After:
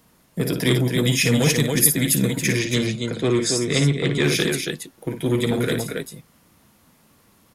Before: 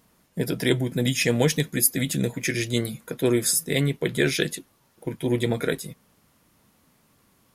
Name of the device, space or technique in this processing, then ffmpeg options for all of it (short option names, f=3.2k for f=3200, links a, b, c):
one-band saturation: -filter_complex "[0:a]asettb=1/sr,asplit=3[a][b][c];[a]atrim=end=2.594[d];[b]atrim=start=2.59:end=4.24,asetpts=PTS-STARTPTS,afade=t=in:d=0.004:c=qsin,afade=t=out:st=1.646:d=0.004:c=qsin,lowpass=f=7.3k:w=0.5412,lowpass=f=7.3k:w=1.3066[e];[c]atrim=start=4.236[f];[d][e]acrossfade=d=0.004:c1=hsin:c2=qsin[g];[g][f]acrossfade=d=0.004:c1=qsin:c2=hsin,aecho=1:1:55.39|277:0.398|0.501,acrossover=split=260|2200[h][i][j];[i]asoftclip=type=tanh:threshold=-24.5dB[k];[h][k][j]amix=inputs=3:normalize=0,volume=4dB"